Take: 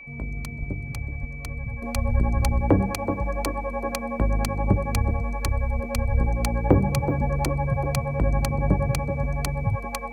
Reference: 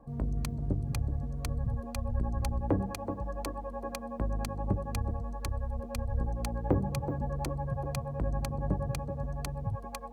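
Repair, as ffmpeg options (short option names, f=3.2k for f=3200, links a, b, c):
-filter_complex "[0:a]bandreject=f=2.3k:w=30,asplit=3[a][b][c];[a]afade=t=out:st=0.59:d=0.02[d];[b]highpass=f=140:w=0.5412,highpass=f=140:w=1.3066,afade=t=in:st=0.59:d=0.02,afade=t=out:st=0.71:d=0.02[e];[c]afade=t=in:st=0.71:d=0.02[f];[d][e][f]amix=inputs=3:normalize=0,asplit=3[g][h][i];[g]afade=t=out:st=1.2:d=0.02[j];[h]highpass=f=140:w=0.5412,highpass=f=140:w=1.3066,afade=t=in:st=1.2:d=0.02,afade=t=out:st=1.32:d=0.02[k];[i]afade=t=in:st=1.32:d=0.02[l];[j][k][l]amix=inputs=3:normalize=0,asetnsamples=n=441:p=0,asendcmd='1.82 volume volume -9.5dB',volume=0dB"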